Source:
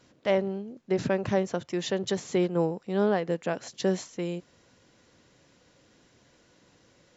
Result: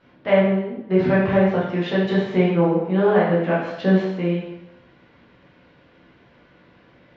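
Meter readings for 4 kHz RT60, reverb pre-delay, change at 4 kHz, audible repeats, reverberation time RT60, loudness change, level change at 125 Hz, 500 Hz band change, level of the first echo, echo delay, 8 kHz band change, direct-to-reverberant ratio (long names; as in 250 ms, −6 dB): 0.80 s, 6 ms, +3.0 dB, no echo audible, 0.85 s, +9.0 dB, +11.5 dB, +8.0 dB, no echo audible, no echo audible, can't be measured, −7.5 dB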